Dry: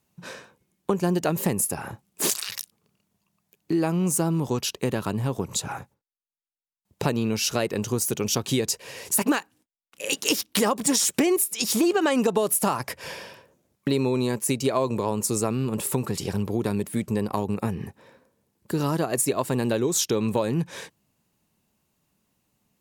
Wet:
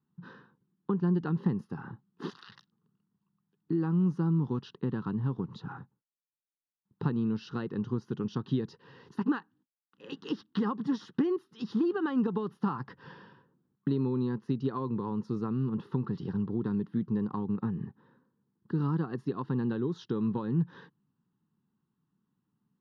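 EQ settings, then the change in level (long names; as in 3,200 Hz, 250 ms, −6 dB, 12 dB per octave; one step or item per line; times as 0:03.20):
head-to-tape spacing loss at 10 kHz 44 dB
low shelf with overshoot 100 Hz −12.5 dB, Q 1.5
phaser with its sweep stopped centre 2,300 Hz, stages 6
−2.5 dB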